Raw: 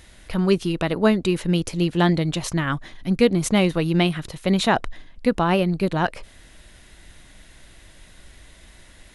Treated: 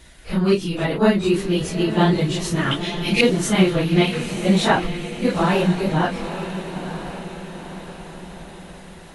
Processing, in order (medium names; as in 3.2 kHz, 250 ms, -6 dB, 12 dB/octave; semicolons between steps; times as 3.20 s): phase randomisation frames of 100 ms; 2.71–3.21 s: resonant high shelf 1.9 kHz +11.5 dB, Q 3; echo that smears into a reverb 935 ms, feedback 53%, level -10 dB; trim +1.5 dB